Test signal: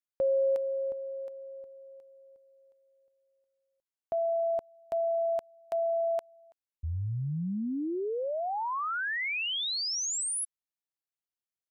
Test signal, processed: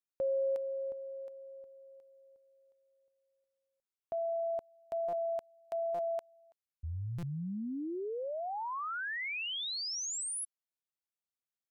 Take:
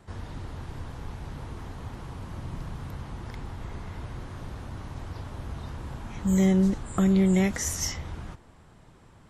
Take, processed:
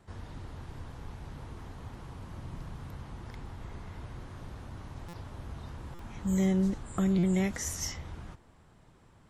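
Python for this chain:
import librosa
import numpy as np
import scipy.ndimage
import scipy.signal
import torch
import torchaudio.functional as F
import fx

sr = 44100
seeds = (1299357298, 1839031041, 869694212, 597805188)

y = fx.buffer_glitch(x, sr, at_s=(5.08, 5.94, 7.18), block=256, repeats=8)
y = y * 10.0 ** (-5.5 / 20.0)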